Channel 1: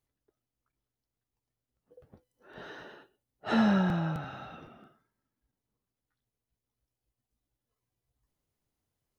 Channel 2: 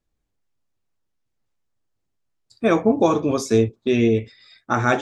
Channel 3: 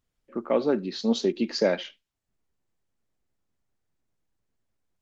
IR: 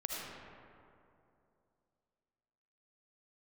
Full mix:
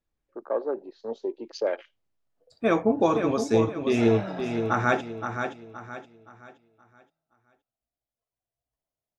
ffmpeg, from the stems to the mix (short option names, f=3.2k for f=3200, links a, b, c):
-filter_complex "[0:a]equalizer=f=660:w=3.4:g=14,adelay=500,volume=-8.5dB,asplit=2[a][b];[b]volume=-9.5dB[c];[1:a]lowpass=f=3.6k:p=1,volume=-2.5dB,asplit=2[d][e];[e]volume=-7dB[f];[2:a]highpass=f=360:w=0.5412,highpass=f=360:w=1.3066,afwtdn=0.02,highshelf=f=2.1k:g=-9.5,volume=-0.5dB[g];[c][f]amix=inputs=2:normalize=0,aecho=0:1:521|1042|1563|2084|2605:1|0.35|0.122|0.0429|0.015[h];[a][d][g][h]amix=inputs=4:normalize=0,lowshelf=f=470:g=-4"